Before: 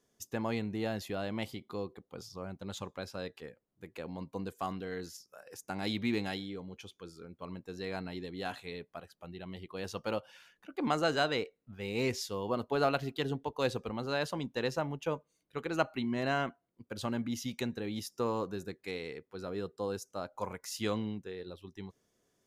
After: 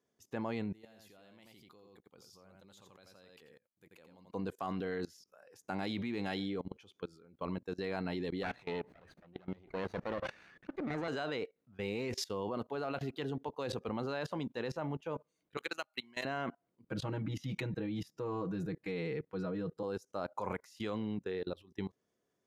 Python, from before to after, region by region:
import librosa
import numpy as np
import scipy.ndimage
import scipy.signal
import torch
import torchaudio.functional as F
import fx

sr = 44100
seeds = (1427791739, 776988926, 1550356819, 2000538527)

y = fx.chain(x, sr, fx.pre_emphasis(coefficient=0.8),
    fx.echo_single(ms=86, db=-6.5), at=(0.73, 4.31))
y = fx.chain(y, sr, fx.lower_of_two(delay_ms=0.47),
    fx.lowpass(hz=2300.0, slope=6),
    fx.sustainer(db_per_s=72.0), at=(8.43, 11.08))
y = fx.chain(y, sr, fx.pre_emphasis(coefficient=0.97),
    fx.transient(attack_db=11, sustain_db=-3),
    fx.band_squash(depth_pct=70), at=(15.57, 16.25))
y = fx.chain(y, sr, fx.bass_treble(bass_db=9, treble_db=-6),
    fx.comb(ms=6.3, depth=0.99), at=(16.84, 19.83))
y = fx.highpass(y, sr, hz=120.0, slope=6)
y = fx.high_shelf(y, sr, hz=4400.0, db=-10.5)
y = fx.level_steps(y, sr, step_db=23)
y = y * librosa.db_to_amplitude(9.0)